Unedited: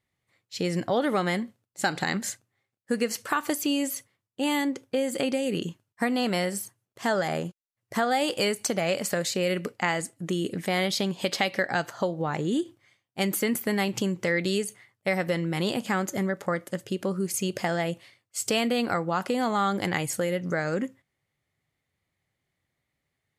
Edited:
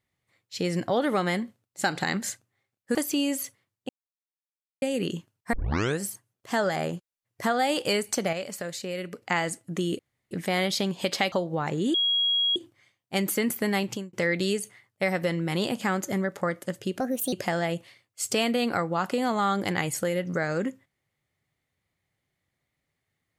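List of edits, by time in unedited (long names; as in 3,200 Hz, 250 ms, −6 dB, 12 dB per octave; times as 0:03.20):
0:02.95–0:03.47: remove
0:04.41–0:05.34: silence
0:06.05: tape start 0.48 s
0:08.85–0:09.74: clip gain −7 dB
0:10.51: splice in room tone 0.32 s
0:11.52–0:11.99: remove
0:12.61: insert tone 3,300 Hz −21 dBFS 0.62 s
0:13.87–0:14.18: fade out
0:17.05–0:17.49: play speed 135%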